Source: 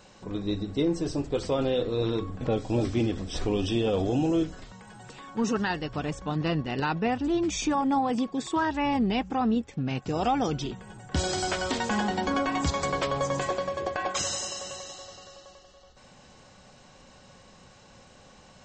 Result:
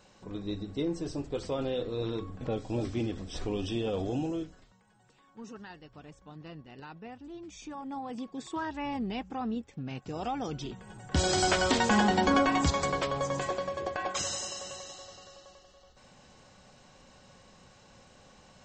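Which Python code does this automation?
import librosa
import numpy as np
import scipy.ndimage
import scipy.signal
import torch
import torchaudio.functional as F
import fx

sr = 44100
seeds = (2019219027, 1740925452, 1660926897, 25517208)

y = fx.gain(x, sr, db=fx.line((4.18, -6.0), (4.83, -18.5), (7.47, -18.5), (8.44, -8.5), (10.42, -8.5), (11.42, 3.0), (12.36, 3.0), (13.11, -3.5)))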